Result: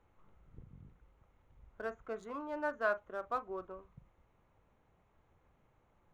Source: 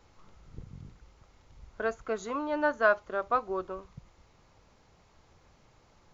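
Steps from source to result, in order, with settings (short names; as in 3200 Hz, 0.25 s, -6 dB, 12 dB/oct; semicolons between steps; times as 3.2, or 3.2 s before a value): Wiener smoothing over 9 samples; on a send: reverb, pre-delay 38 ms, DRR 14.5 dB; on the sum: gain -9 dB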